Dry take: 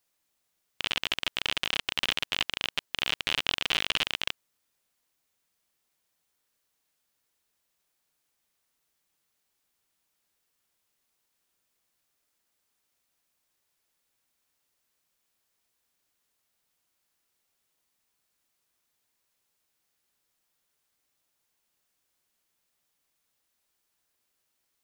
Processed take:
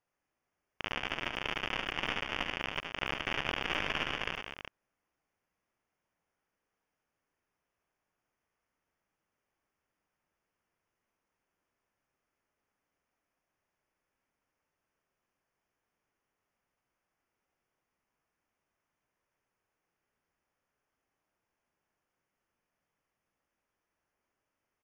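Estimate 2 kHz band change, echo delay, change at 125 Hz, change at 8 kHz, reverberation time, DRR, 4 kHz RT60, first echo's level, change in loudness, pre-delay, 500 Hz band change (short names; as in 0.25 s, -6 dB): -3.0 dB, 74 ms, +2.0 dB, -13.5 dB, none, none, none, -7.0 dB, -6.0 dB, none, +1.5 dB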